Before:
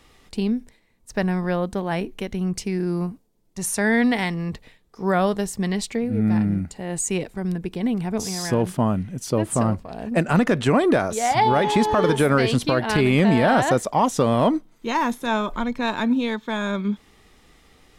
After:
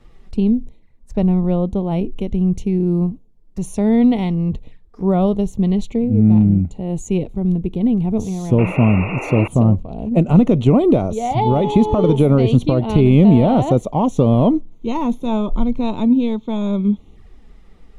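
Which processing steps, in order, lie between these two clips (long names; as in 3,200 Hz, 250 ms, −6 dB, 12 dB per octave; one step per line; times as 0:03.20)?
spectral tilt −3 dB per octave
sound drawn into the spectrogram noise, 0:08.58–0:09.48, 260–2,800 Hz −24 dBFS
flanger swept by the level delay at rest 11.3 ms, full sweep at −24.5 dBFS
level +1 dB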